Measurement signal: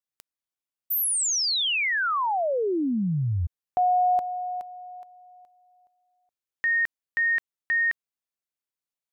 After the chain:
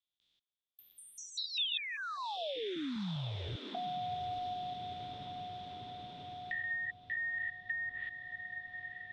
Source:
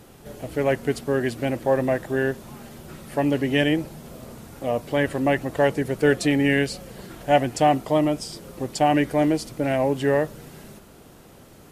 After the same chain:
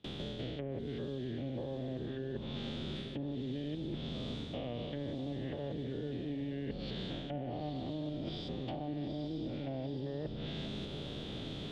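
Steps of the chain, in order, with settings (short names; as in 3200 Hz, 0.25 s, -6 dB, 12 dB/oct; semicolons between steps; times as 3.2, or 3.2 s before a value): stepped spectrum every 0.2 s; gate with hold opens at -41 dBFS, range -32 dB; treble ducked by the level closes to 890 Hz, closed at -23 dBFS; bell 1100 Hz -11.5 dB 2.7 oct; limiter -24.5 dBFS; reverse; compressor 6:1, threshold -43 dBFS; reverse; synth low-pass 3500 Hz, resonance Q 8.9; diffused feedback echo 0.877 s, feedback 53%, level -13 dB; three-band squash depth 70%; gain +5 dB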